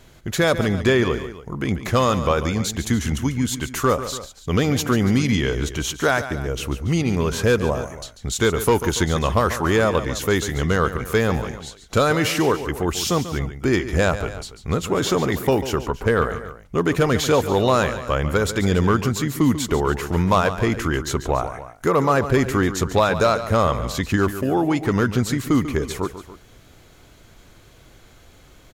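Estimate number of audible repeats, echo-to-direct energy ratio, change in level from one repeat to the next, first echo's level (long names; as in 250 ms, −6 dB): 2, −10.5 dB, −4.5 dB, −12.0 dB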